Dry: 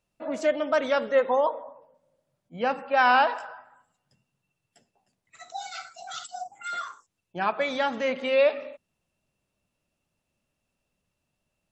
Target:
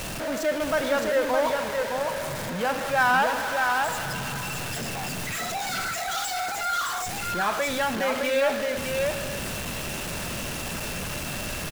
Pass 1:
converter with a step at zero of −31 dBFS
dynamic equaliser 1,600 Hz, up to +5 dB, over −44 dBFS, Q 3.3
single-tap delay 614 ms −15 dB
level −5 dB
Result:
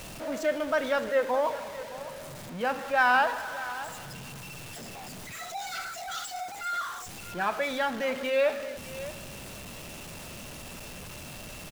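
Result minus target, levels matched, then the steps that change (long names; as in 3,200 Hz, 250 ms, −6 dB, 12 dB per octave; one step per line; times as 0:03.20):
echo-to-direct −11 dB; converter with a step at zero: distortion −7 dB
change: converter with a step at zero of −22 dBFS
change: single-tap delay 614 ms −4 dB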